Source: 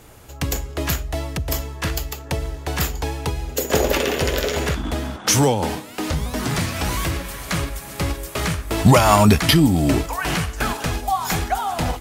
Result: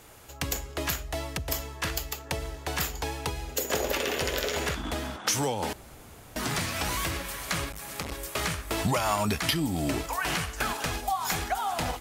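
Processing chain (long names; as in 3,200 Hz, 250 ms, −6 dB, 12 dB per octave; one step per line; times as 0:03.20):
low-shelf EQ 430 Hz −7.5 dB
downward compressor 3 to 1, threshold −23 dBFS, peak gain reduction 9.5 dB
0:05.73–0:06.36: fill with room tone
0:07.72–0:08.12: saturating transformer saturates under 900 Hz
level −2.5 dB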